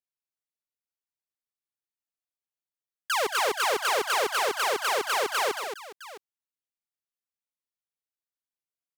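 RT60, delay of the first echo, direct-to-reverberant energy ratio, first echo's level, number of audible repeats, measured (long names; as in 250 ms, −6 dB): no reverb audible, 125 ms, no reverb audible, −14.0 dB, 3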